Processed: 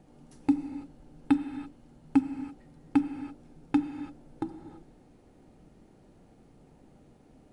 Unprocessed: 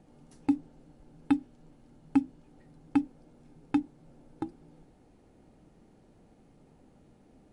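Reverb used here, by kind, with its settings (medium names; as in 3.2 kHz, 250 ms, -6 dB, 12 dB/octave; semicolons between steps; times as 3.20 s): gated-style reverb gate 360 ms flat, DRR 7.5 dB; trim +1.5 dB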